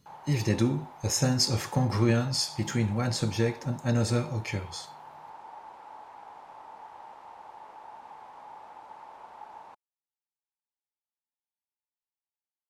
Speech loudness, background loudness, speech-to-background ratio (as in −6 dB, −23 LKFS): −28.0 LKFS, −47.5 LKFS, 19.5 dB